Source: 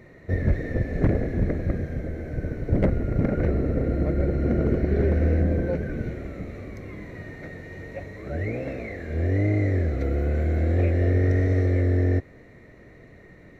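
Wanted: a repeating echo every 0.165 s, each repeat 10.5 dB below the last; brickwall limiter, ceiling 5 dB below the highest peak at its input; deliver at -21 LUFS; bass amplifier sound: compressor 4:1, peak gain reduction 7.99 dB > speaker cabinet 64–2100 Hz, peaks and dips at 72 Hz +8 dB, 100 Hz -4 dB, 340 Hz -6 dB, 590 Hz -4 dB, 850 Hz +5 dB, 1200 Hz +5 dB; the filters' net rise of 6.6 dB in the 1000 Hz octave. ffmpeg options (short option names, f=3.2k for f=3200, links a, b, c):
-af "equalizer=f=1k:t=o:g=7,alimiter=limit=-14.5dB:level=0:latency=1,aecho=1:1:165|330|495:0.299|0.0896|0.0269,acompressor=threshold=-26dB:ratio=4,highpass=f=64:w=0.5412,highpass=f=64:w=1.3066,equalizer=f=72:t=q:w=4:g=8,equalizer=f=100:t=q:w=4:g=-4,equalizer=f=340:t=q:w=4:g=-6,equalizer=f=590:t=q:w=4:g=-4,equalizer=f=850:t=q:w=4:g=5,equalizer=f=1.2k:t=q:w=4:g=5,lowpass=f=2.1k:w=0.5412,lowpass=f=2.1k:w=1.3066,volume=10dB"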